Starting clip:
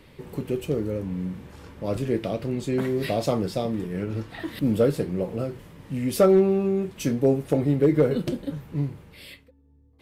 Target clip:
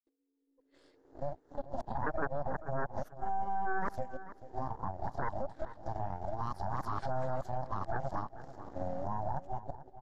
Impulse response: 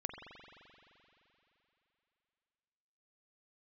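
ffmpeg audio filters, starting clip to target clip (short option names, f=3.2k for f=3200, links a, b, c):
-filter_complex "[0:a]areverse,afftfilt=real='re*between(b*sr/4096,250,7500)':imag='im*between(b*sr/4096,250,7500)':win_size=4096:overlap=0.75,dynaudnorm=f=230:g=9:m=16.5dB,firequalizer=gain_entry='entry(430,0);entry(1000,-17);entry(5000,-3)':delay=0.05:min_phase=1,aeval=exprs='1*(cos(1*acos(clip(val(0)/1,-1,1)))-cos(1*PI/2))+0.355*(cos(3*acos(clip(val(0)/1,-1,1)))-cos(3*PI/2))+0.224*(cos(6*acos(clip(val(0)/1,-1,1)))-cos(6*PI/2))':c=same,alimiter=level_in=8.5dB:limit=-24dB:level=0:latency=1:release=409,volume=-8.5dB,highshelf=f=2k:t=q:w=3:g=-7,asplit=2[a][b];[b]adelay=439,lowpass=f=4.1k:p=1,volume=-14dB,asplit=2[c][d];[d]adelay=439,lowpass=f=4.1k:p=1,volume=0.19[e];[a][c][e]amix=inputs=3:normalize=0,volume=7dB"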